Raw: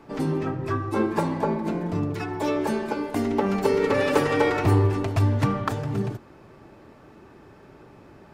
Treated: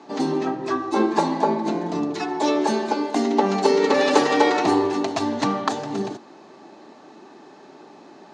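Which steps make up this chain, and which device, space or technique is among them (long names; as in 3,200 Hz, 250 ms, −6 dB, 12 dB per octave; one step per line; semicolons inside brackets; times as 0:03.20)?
television speaker (loudspeaker in its box 220–7,800 Hz, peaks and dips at 500 Hz −5 dB, 780 Hz +5 dB, 1,400 Hz −5 dB, 2,300 Hz −4 dB, 4,100 Hz +8 dB, 6,400 Hz +7 dB)
level +5 dB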